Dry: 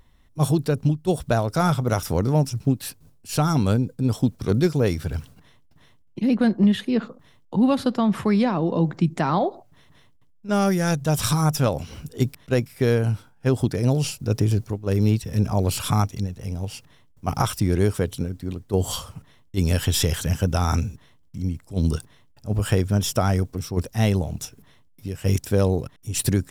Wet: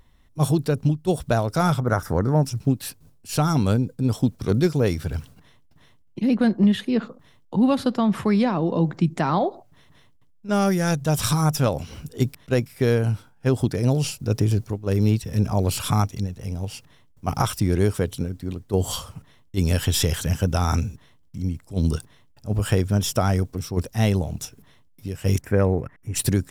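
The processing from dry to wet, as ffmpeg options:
-filter_complex "[0:a]asettb=1/sr,asplit=3[s0][s1][s2];[s0]atrim=end=1.804[s3];[s1]atrim=start=1.8:end=2.43,asetpts=PTS-STARTPTS,afade=t=in:d=0.004:c=qsin,afade=t=out:st=0.626:d=0.004:c=qsin,highshelf=f=2100:t=q:w=3:g=-7.5[s4];[s2]atrim=start=2.426[s5];[s3][s4]acrossfade=d=0.004:c1=hsin:c2=qsin[s6];[s6][s5]acrossfade=d=0.004:c1=qsin:c2=hsin,asplit=3[s7][s8][s9];[s7]afade=t=out:st=25.4:d=0.02[s10];[s8]highshelf=f=2700:t=q:w=3:g=-11,afade=t=in:st=25.4:d=0.02,afade=t=out:st=26.15:d=0.02[s11];[s9]afade=t=in:st=26.15:d=0.02[s12];[s10][s11][s12]amix=inputs=3:normalize=0"

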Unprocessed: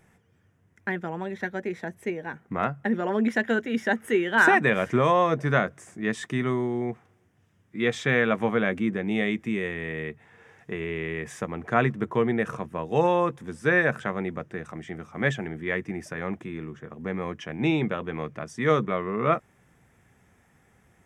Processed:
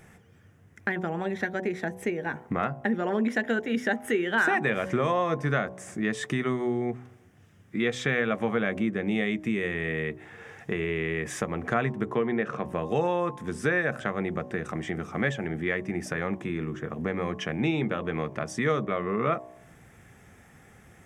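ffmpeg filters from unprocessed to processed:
-filter_complex "[0:a]asplit=3[s0][s1][s2];[s0]afade=t=out:st=12.14:d=0.02[s3];[s1]highpass=150,lowpass=4100,afade=t=in:st=12.14:d=0.02,afade=t=out:st=12.64:d=0.02[s4];[s2]afade=t=in:st=12.64:d=0.02[s5];[s3][s4][s5]amix=inputs=3:normalize=0,bandreject=f=970:w=14,bandreject=f=62.17:t=h:w=4,bandreject=f=124.34:t=h:w=4,bandreject=f=186.51:t=h:w=4,bandreject=f=248.68:t=h:w=4,bandreject=f=310.85:t=h:w=4,bandreject=f=373.02:t=h:w=4,bandreject=f=435.19:t=h:w=4,bandreject=f=497.36:t=h:w=4,bandreject=f=559.53:t=h:w=4,bandreject=f=621.7:t=h:w=4,bandreject=f=683.87:t=h:w=4,bandreject=f=746.04:t=h:w=4,bandreject=f=808.21:t=h:w=4,bandreject=f=870.38:t=h:w=4,bandreject=f=932.55:t=h:w=4,bandreject=f=994.72:t=h:w=4,bandreject=f=1056.89:t=h:w=4,bandreject=f=1119.06:t=h:w=4,acompressor=threshold=0.0158:ratio=2.5,volume=2.51"

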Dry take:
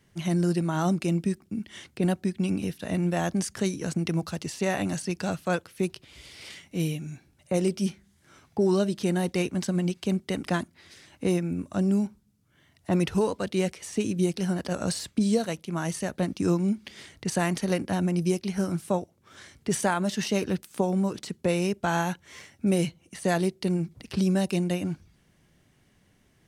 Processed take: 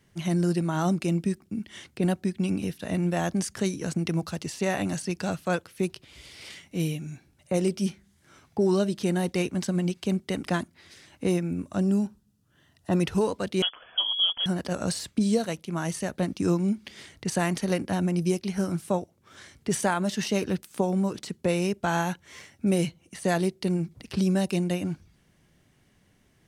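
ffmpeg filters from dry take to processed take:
-filter_complex "[0:a]asettb=1/sr,asplit=3[s0][s1][s2];[s0]atrim=end=11.834[s3];[s1]atrim=start=11.83:end=13.01,asetpts=PTS-STARTPTS,afade=t=in:d=0.004:c=qsin,afade=t=out:st=1.176:d=0.004:c=qsin,asuperstop=centerf=2200:order=4:qfactor=6.6[s4];[s2]atrim=start=13.006[s5];[s3][s4]acrossfade=d=0.004:c1=hsin:c2=qsin[s6];[s6][s5]acrossfade=d=0.004:c1=qsin:c2=hsin,asettb=1/sr,asplit=3[s7][s8][s9];[s7]atrim=end=13.624[s10];[s8]atrim=start=13.62:end=14.46,asetpts=PTS-STARTPTS,afade=t=in:d=0.004:c=qsin,afade=t=out:st=0.836:d=0.004:c=qsin,lowpass=f=3000:t=q:w=0.5098,lowpass=f=3000:t=q:w=0.6013,lowpass=f=3000:t=q:w=0.9,lowpass=f=3000:t=q:w=2.563,afreqshift=-3500[s11];[s9]atrim=start=14.456[s12];[s10][s11]acrossfade=d=0.004:c1=hsin:c2=qsin[s13];[s13][s12]acrossfade=d=0.004:c1=qsin:c2=hsin"

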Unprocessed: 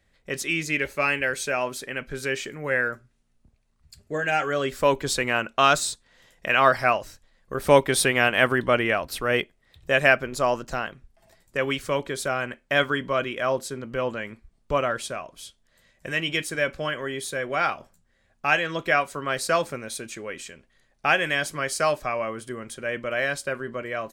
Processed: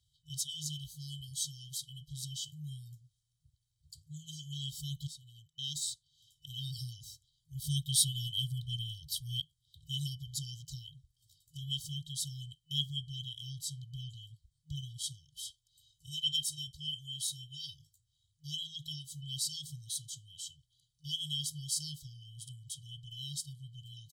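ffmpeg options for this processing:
-filter_complex "[0:a]asettb=1/sr,asplit=3[s0][s1][s2];[s0]atrim=end=15.364[s3];[s1]atrim=start=15.36:end=17.74,asetpts=PTS-STARTPTS,afade=t=in:d=0.004:c=qsin,afade=t=out:st=2.376:d=0.004:c=qsin,aecho=1:1:2.9:0.65,atrim=end_sample=104958[s4];[s2]atrim=start=17.736[s5];[s3][s4]acrossfade=d=0.004:c1=hsin:c2=qsin[s6];[s6][s5]acrossfade=d=0.004:c1=qsin:c2=hsin,asplit=2[s7][s8];[s7]atrim=end=5.07,asetpts=PTS-STARTPTS,afade=t=out:st=5.066:d=0.004:c=hsin:silence=0.0794328[s9];[s8]atrim=start=5.07,asetpts=PTS-STARTPTS,afade=t=in:d=1.66:silence=0.0794328[s10];[s9][s10]concat=n=2:v=0:a=1,afftfilt=real='re*(1-between(b*sr/4096,160,3000))':imag='im*(1-between(b*sr/4096,160,3000))':win_size=4096:overlap=0.75,highpass=100,aecho=1:1:1.3:0.56,volume=0.631"

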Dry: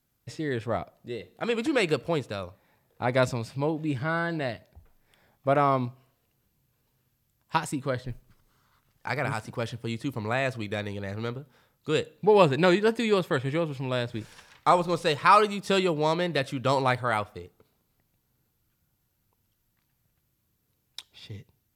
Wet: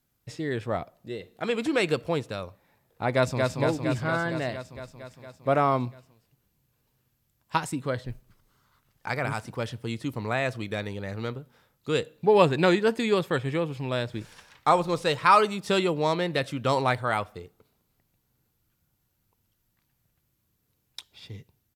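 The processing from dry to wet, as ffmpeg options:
-filter_complex "[0:a]asplit=2[s0][s1];[s1]afade=t=in:st=3.13:d=0.01,afade=t=out:st=3.58:d=0.01,aecho=0:1:230|460|690|920|1150|1380|1610|1840|2070|2300|2530|2760:0.707946|0.530959|0.39822|0.298665|0.223998|0.167999|0.125999|0.0944994|0.0708745|0.0531559|0.0398669|0.0299002[s2];[s0][s2]amix=inputs=2:normalize=0"

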